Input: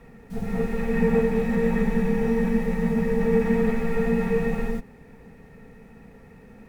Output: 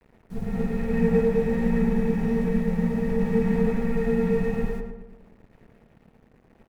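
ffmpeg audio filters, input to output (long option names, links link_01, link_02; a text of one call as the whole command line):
ffmpeg -i in.wav -filter_complex "[0:a]lowshelf=frequency=270:gain=6.5,bandreject=frequency=1200:width=19,aeval=exprs='sgn(val(0))*max(abs(val(0))-0.00841,0)':channel_layout=same,asplit=2[link_01][link_02];[link_02]adelay=108,lowpass=frequency=1900:poles=1,volume=-4dB,asplit=2[link_03][link_04];[link_04]adelay=108,lowpass=frequency=1900:poles=1,volume=0.52,asplit=2[link_05][link_06];[link_06]adelay=108,lowpass=frequency=1900:poles=1,volume=0.52,asplit=2[link_07][link_08];[link_08]adelay=108,lowpass=frequency=1900:poles=1,volume=0.52,asplit=2[link_09][link_10];[link_10]adelay=108,lowpass=frequency=1900:poles=1,volume=0.52,asplit=2[link_11][link_12];[link_12]adelay=108,lowpass=frequency=1900:poles=1,volume=0.52,asplit=2[link_13][link_14];[link_14]adelay=108,lowpass=frequency=1900:poles=1,volume=0.52[link_15];[link_03][link_05][link_07][link_09][link_11][link_13][link_15]amix=inputs=7:normalize=0[link_16];[link_01][link_16]amix=inputs=2:normalize=0,volume=-5dB" out.wav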